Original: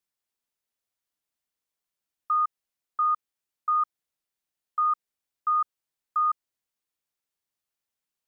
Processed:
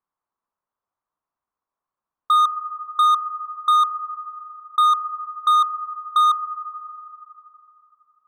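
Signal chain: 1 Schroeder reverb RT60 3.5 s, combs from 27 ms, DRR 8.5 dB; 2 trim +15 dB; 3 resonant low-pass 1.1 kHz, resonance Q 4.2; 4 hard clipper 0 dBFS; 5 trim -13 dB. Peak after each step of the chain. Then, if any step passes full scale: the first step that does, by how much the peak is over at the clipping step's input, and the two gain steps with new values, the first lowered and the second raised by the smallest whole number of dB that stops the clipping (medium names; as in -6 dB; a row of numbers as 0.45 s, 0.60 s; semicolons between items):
-19.0 dBFS, -4.0 dBFS, +5.0 dBFS, 0.0 dBFS, -13.0 dBFS; step 3, 5.0 dB; step 2 +10 dB, step 5 -8 dB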